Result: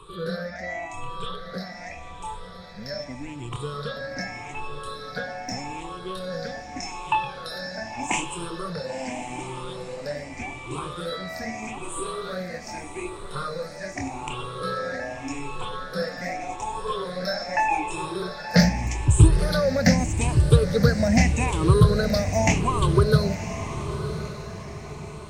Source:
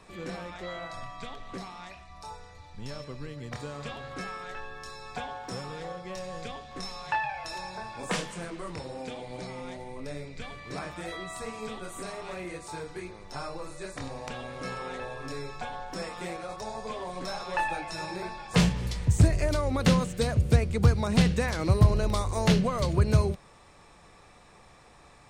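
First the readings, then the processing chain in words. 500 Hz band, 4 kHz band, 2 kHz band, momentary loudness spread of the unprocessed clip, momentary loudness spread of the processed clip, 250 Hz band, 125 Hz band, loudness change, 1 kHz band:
+6.0 dB, +4.5 dB, +6.0 dB, 17 LU, 16 LU, +4.5 dB, +4.0 dB, +4.5 dB, +6.0 dB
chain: rippled gain that drifts along the octave scale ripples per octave 0.65, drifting +0.83 Hz, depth 23 dB
feedback delay with all-pass diffusion 1,023 ms, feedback 43%, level −10.5 dB

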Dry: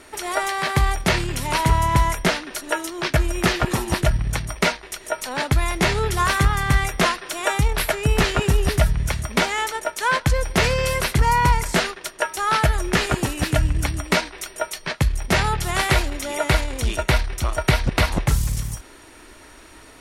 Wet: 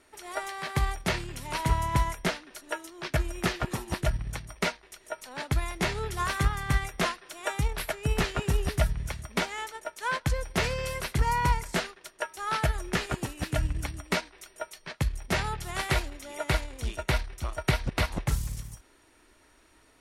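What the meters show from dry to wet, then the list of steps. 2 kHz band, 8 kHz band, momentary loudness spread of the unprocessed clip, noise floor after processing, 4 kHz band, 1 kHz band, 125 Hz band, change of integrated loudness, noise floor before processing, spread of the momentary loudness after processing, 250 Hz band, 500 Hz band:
−9.5 dB, −10.5 dB, 7 LU, −61 dBFS, −10.0 dB, −9.5 dB, −8.5 dB, −9.5 dB, −45 dBFS, 10 LU, −9.0 dB, −9.5 dB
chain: expander for the loud parts 1.5 to 1, over −30 dBFS
level −6.5 dB

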